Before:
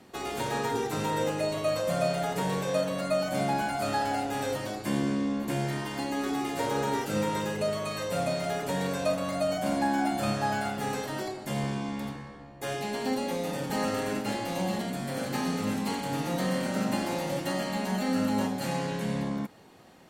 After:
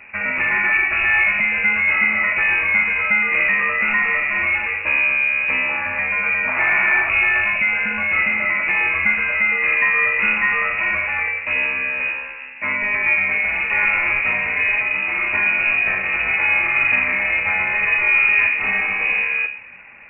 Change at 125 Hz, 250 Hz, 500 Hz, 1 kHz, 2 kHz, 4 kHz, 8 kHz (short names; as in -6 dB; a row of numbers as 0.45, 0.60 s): n/a, -8.0 dB, -4.5 dB, +4.0 dB, +24.5 dB, +2.5 dB, under -40 dB